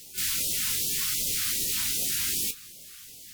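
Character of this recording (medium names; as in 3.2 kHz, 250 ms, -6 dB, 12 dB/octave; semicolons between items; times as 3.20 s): a quantiser's noise floor 8-bit, dither triangular; phasing stages 2, 2.6 Hz, lowest notch 530–1300 Hz; WMA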